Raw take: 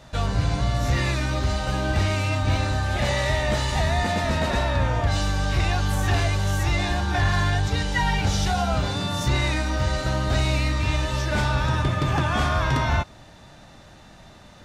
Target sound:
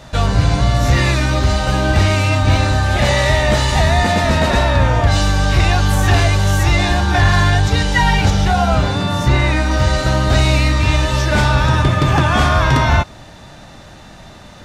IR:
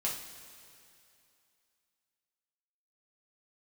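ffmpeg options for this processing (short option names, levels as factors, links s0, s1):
-filter_complex "[0:a]asettb=1/sr,asplit=3[s0][s1][s2];[s0]atrim=end=8.304[s3];[s1]atrim=start=8.3:end=9.71,asetpts=PTS-STARTPTS,afade=t=in:d=0.004:c=qsin,afade=t=out:st=1.406:d=0.004:c=qsin,acrossover=split=2800[s4][s5];[s5]acompressor=threshold=0.0112:ratio=4:attack=1:release=60[s6];[s4][s6]amix=inputs=2:normalize=0[s7];[s2]atrim=start=9.706[s8];[s3][s7]acrossfade=d=0.004:c1=hsin:c2=qsin[s9];[s9][s8]acrossfade=d=0.004:c1=qsin:c2=hsin,volume=2.82"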